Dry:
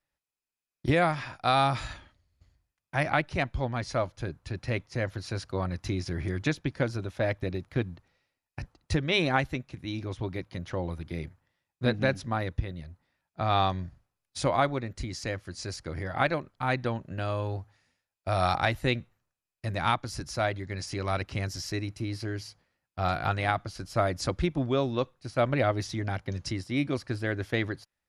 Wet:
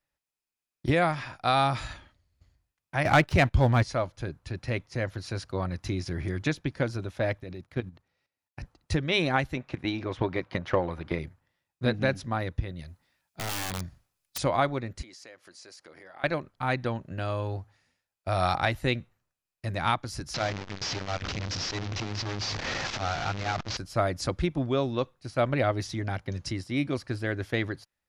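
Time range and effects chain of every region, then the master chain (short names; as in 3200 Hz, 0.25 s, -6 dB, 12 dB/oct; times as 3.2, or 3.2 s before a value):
3.05–3.83 bell 95 Hz +6 dB 0.83 oct + sample leveller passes 2
7.4–8.62 HPF 51 Hz 6 dB/oct + level quantiser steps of 13 dB
9.57–11.19 high shelf 5400 Hz -6 dB + transient shaper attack +10 dB, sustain +4 dB + overdrive pedal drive 13 dB, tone 1900 Hz, clips at -8.5 dBFS
12.79–14.38 high shelf 2500 Hz +9.5 dB + compressor 3:1, threshold -26 dBFS + wrapped overs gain 26.5 dB
15.02–16.24 HPF 390 Hz + compressor 3:1, threshold -49 dBFS
20.34–23.77 delta modulation 32 kbps, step -24 dBFS + notches 60/120/180/240/300/360/420/480 Hz + core saturation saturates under 780 Hz
whole clip: dry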